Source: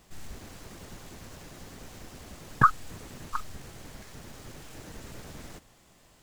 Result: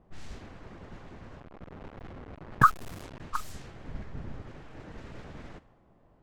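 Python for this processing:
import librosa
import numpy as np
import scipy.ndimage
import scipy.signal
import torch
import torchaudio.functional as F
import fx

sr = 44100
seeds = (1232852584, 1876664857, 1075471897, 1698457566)

y = fx.delta_hold(x, sr, step_db=-39.0, at=(1.4, 3.2))
y = fx.high_shelf(y, sr, hz=5700.0, db=5.5)
y = fx.env_lowpass(y, sr, base_hz=750.0, full_db=-30.5)
y = fx.low_shelf(y, sr, hz=250.0, db=10.0, at=(3.87, 4.42))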